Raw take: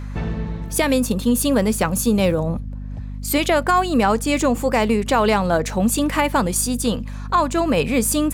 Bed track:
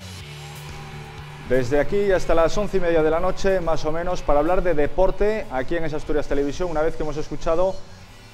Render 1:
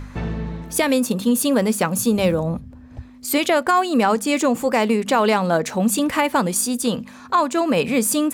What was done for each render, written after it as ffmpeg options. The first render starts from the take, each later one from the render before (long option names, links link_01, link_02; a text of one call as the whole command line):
ffmpeg -i in.wav -af "bandreject=frequency=50:width_type=h:width=4,bandreject=frequency=100:width_type=h:width=4,bandreject=frequency=150:width_type=h:width=4,bandreject=frequency=200:width_type=h:width=4" out.wav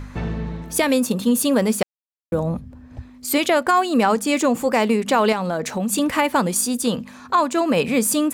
ffmpeg -i in.wav -filter_complex "[0:a]asettb=1/sr,asplit=3[link_01][link_02][link_03];[link_01]atrim=end=5.324[link_04];[link_02]atrim=start=5.32:end=5.93,asetpts=PTS-STARTPTS,afade=type=in:duration=0.004:curve=qsin,afade=type=out:start_time=0.606:duration=0.004:curve=qsin,acompressor=threshold=-19dB:ratio=5:attack=3.2:release=140:knee=1:detection=peak[link_05];[link_03]atrim=start=5.926[link_06];[link_04][link_05]acrossfade=duration=0.004:curve1=hsin:curve2=qsin[link_07];[link_07][link_06]acrossfade=duration=0.004:curve1=qsin:curve2=hsin,asplit=3[link_08][link_09][link_10];[link_08]atrim=end=1.83,asetpts=PTS-STARTPTS,afade=type=out:start_time=1.826:duration=0.004:curve=hsin[link_11];[link_09]atrim=start=1.83:end=2.32,asetpts=PTS-STARTPTS,volume=0[link_12];[link_10]atrim=start=2.32,asetpts=PTS-STARTPTS,afade=type=in:duration=0.004:curve=hsin[link_13];[link_11][link_12][link_13]concat=n=3:v=0:a=1" out.wav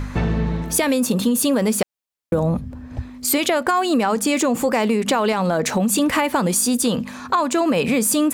ffmpeg -i in.wav -filter_complex "[0:a]asplit=2[link_01][link_02];[link_02]alimiter=limit=-16.5dB:level=0:latency=1:release=16,volume=2dB[link_03];[link_01][link_03]amix=inputs=2:normalize=0,acompressor=threshold=-15dB:ratio=6" out.wav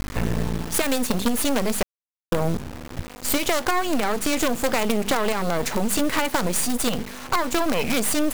ffmpeg -i in.wav -af "acrusher=bits=3:dc=4:mix=0:aa=0.000001,volume=12dB,asoftclip=hard,volume=-12dB" out.wav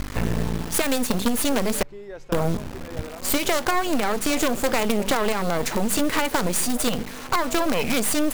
ffmpeg -i in.wav -i bed.wav -filter_complex "[1:a]volume=-19dB[link_01];[0:a][link_01]amix=inputs=2:normalize=0" out.wav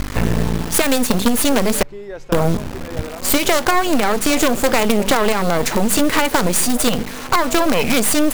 ffmpeg -i in.wav -af "volume=6.5dB" out.wav